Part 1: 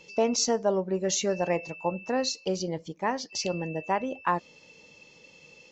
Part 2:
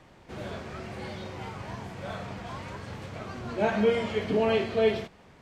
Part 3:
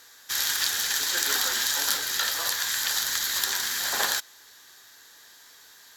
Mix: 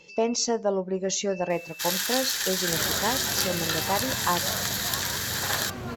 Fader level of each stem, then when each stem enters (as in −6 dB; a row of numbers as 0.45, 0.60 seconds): 0.0, +2.5, −2.0 decibels; 0.00, 2.40, 1.50 seconds